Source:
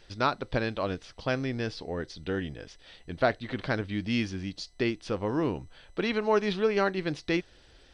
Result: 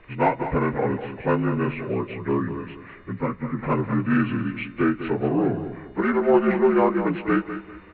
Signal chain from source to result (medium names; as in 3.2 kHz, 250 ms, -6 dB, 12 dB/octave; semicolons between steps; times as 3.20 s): frequency axis rescaled in octaves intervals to 77%; 3.12–3.63 s: FFT filter 240 Hz 0 dB, 630 Hz -16 dB, 1.2 kHz -5 dB; in parallel at -5.5 dB: one-sided clip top -29 dBFS; on the sum: Bessel low-pass 3.2 kHz, order 2; feedback delay 198 ms, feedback 29%, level -10.5 dB; on a send at -24 dB: reverberation RT60 3.7 s, pre-delay 35 ms; on the sum: trim +5 dB